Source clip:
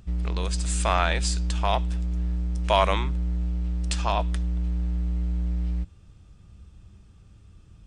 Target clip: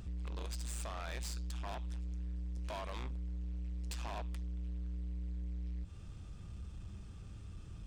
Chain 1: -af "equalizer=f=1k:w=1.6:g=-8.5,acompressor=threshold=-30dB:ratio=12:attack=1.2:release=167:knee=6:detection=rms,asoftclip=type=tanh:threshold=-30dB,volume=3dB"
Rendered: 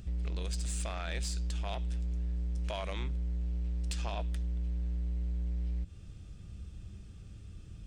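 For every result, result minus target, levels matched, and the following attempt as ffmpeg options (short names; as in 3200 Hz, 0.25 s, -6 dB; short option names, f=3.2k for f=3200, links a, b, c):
soft clip: distortion -12 dB; 1000 Hz band -5.0 dB
-af "equalizer=f=1k:w=1.6:g=-8.5,acompressor=threshold=-30dB:ratio=12:attack=1.2:release=167:knee=6:detection=rms,asoftclip=type=tanh:threshold=-41dB,volume=3dB"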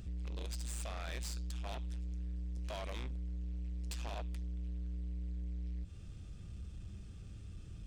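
1000 Hz band -3.5 dB
-af "acompressor=threshold=-30dB:ratio=12:attack=1.2:release=167:knee=6:detection=rms,asoftclip=type=tanh:threshold=-41dB,volume=3dB"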